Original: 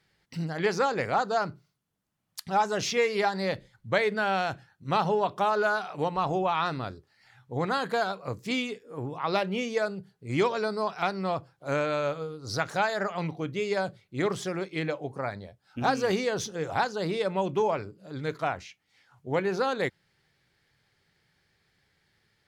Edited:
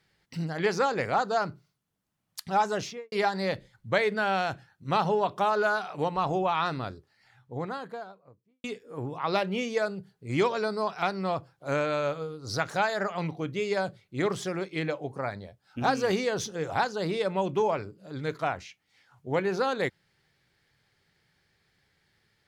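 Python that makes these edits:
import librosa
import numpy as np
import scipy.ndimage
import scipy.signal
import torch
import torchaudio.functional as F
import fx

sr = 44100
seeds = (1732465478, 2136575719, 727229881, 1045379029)

y = fx.studio_fade_out(x, sr, start_s=2.69, length_s=0.43)
y = fx.studio_fade_out(y, sr, start_s=6.83, length_s=1.81)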